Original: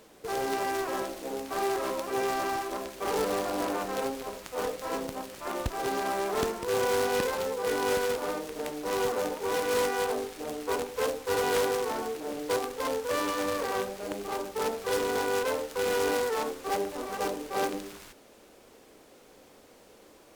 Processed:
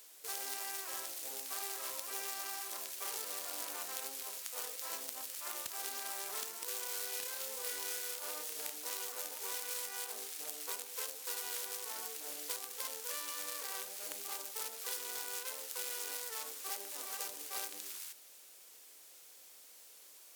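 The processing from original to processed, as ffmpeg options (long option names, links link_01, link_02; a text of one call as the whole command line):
ffmpeg -i in.wav -filter_complex "[0:a]asettb=1/sr,asplit=3[link_01][link_02][link_03];[link_01]atrim=end=6.924[link_04];[link_02]atrim=start=6.92:end=8.76,asetpts=PTS-STARTPTS,afade=type=in:duration=0.004:curve=qsin,afade=type=out:start_time=1.836:duration=0.004:curve=qsin,asplit=2[link_05][link_06];[link_06]adelay=30,volume=-3dB[link_07];[link_05][link_07]amix=inputs=2:normalize=0,atrim=end_sample=81144[link_08];[link_03]atrim=start=8.756[link_09];[link_04][link_08]acrossfade=duration=0.004:curve1=hsin:curve2=qsin[link_10];[link_10][link_09]acrossfade=duration=0.004:curve1=qsin:curve2=hsin,aderivative,acompressor=threshold=-42dB:ratio=6,volume=5.5dB" out.wav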